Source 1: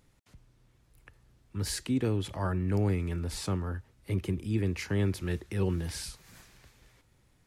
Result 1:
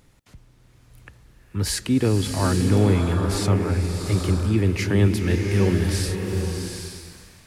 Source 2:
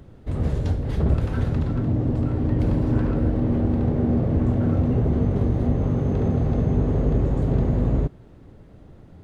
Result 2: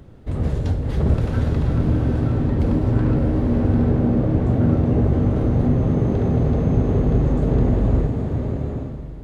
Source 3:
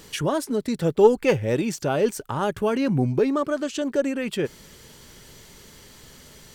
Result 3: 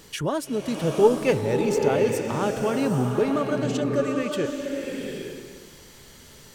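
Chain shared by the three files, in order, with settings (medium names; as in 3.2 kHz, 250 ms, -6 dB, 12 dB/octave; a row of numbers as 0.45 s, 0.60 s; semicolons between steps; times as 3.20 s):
swelling reverb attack 810 ms, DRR 2.5 dB; peak normalisation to -6 dBFS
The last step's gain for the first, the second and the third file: +8.5 dB, +1.5 dB, -2.5 dB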